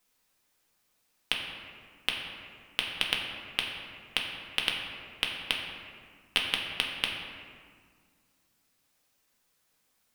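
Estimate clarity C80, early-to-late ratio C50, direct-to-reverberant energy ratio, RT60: 4.0 dB, 3.0 dB, −1.0 dB, 1.8 s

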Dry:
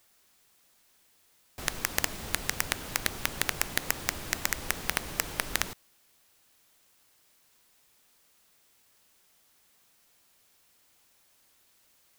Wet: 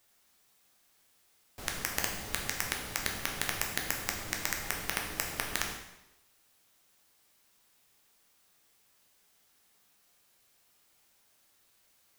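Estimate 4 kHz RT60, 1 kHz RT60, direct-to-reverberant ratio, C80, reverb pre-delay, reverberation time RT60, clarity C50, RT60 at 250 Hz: 0.85 s, 0.85 s, 1.0 dB, 8.0 dB, 5 ms, 0.90 s, 5.5 dB, 0.90 s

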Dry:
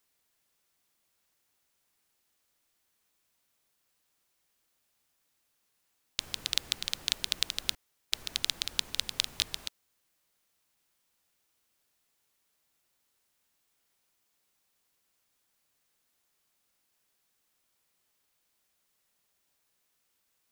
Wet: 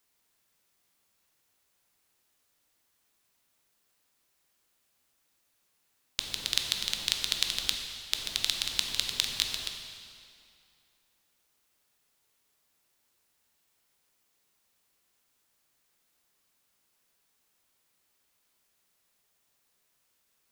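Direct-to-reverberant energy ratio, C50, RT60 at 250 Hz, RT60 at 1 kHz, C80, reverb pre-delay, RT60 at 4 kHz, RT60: 3.0 dB, 4.5 dB, 2.4 s, 2.5 s, 5.0 dB, 11 ms, 2.1 s, 2.5 s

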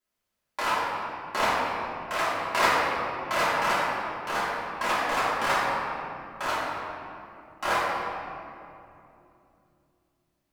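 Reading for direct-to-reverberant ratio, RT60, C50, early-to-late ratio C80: −11.0 dB, 2.8 s, −2.5 dB, −0.5 dB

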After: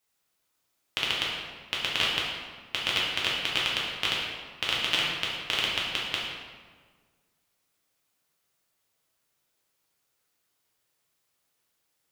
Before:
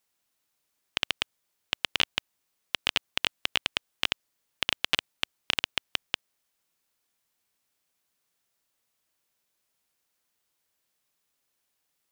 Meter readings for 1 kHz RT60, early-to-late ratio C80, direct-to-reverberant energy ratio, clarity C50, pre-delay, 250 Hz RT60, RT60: 1.5 s, 3.0 dB, −5.5 dB, 0.5 dB, 3 ms, 1.8 s, 1.5 s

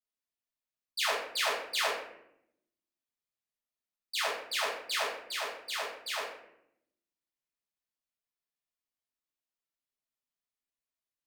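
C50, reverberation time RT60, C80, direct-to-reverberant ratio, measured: 3.0 dB, 0.75 s, 6.5 dB, −9.0 dB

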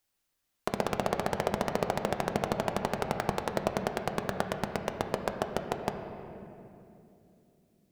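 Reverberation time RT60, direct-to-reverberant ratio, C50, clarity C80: 2.8 s, 5.0 dB, 6.5 dB, 7.5 dB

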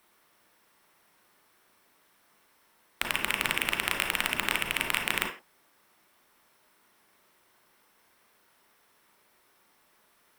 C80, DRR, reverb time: 12.0 dB, 1.5 dB, non-exponential decay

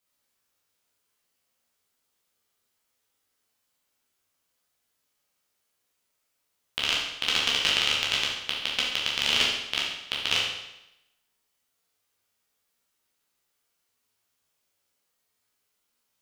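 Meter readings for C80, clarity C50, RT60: 4.5 dB, 1.5 dB, 0.90 s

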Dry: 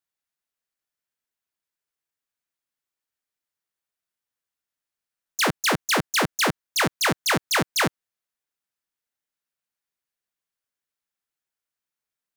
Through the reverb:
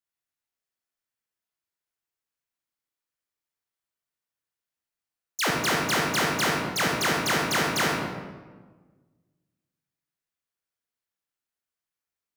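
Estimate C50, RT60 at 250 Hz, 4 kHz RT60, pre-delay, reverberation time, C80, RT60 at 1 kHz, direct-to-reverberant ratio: 0.5 dB, 1.8 s, 0.85 s, 33 ms, 1.4 s, 3.0 dB, 1.3 s, −1.0 dB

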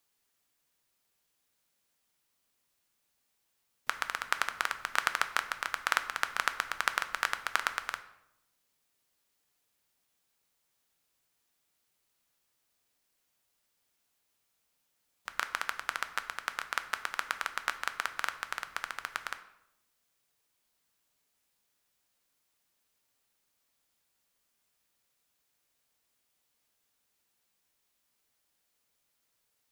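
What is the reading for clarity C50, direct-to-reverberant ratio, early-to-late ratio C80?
13.0 dB, 9.0 dB, 15.5 dB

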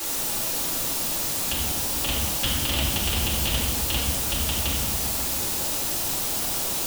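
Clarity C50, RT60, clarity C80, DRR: −0.5 dB, 1.6 s, 2.0 dB, −8.5 dB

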